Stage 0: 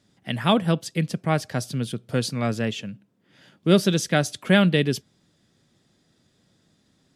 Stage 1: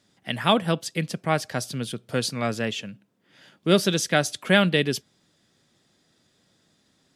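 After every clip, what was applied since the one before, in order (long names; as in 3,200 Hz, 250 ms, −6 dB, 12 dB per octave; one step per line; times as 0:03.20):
low-shelf EQ 310 Hz −8 dB
level +2 dB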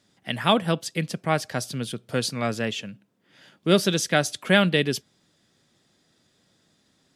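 no processing that can be heard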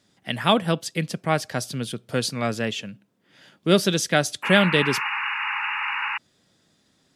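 sound drawn into the spectrogram noise, 0:04.43–0:06.18, 800–2,900 Hz −28 dBFS
level +1 dB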